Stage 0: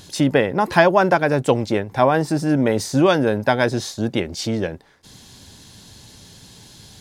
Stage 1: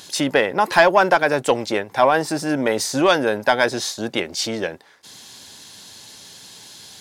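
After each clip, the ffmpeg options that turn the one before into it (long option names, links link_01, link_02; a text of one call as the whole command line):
ffmpeg -i in.wav -af "highpass=frequency=710:poles=1,acontrast=46,volume=-1dB" out.wav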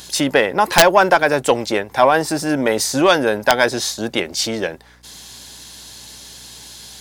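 ffmpeg -i in.wav -af "highshelf=frequency=10000:gain=6,aeval=exprs='val(0)+0.00224*(sin(2*PI*60*n/s)+sin(2*PI*2*60*n/s)/2+sin(2*PI*3*60*n/s)/3+sin(2*PI*4*60*n/s)/4+sin(2*PI*5*60*n/s)/5)':channel_layout=same,aeval=exprs='(mod(1.5*val(0)+1,2)-1)/1.5':channel_layout=same,volume=2.5dB" out.wav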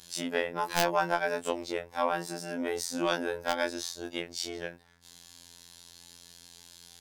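ffmpeg -i in.wav -af "afftfilt=real='hypot(re,im)*cos(PI*b)':imag='0':win_size=2048:overlap=0.75,afftfilt=real='re*2*eq(mod(b,4),0)':imag='im*2*eq(mod(b,4),0)':win_size=2048:overlap=0.75,volume=-14.5dB" out.wav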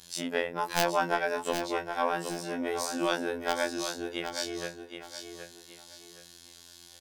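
ffmpeg -i in.wav -af "aecho=1:1:769|1538|2307|3076:0.398|0.119|0.0358|0.0107" out.wav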